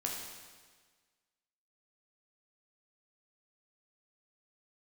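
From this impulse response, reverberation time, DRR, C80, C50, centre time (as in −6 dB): 1.5 s, −1.5 dB, 4.0 dB, 1.5 dB, 72 ms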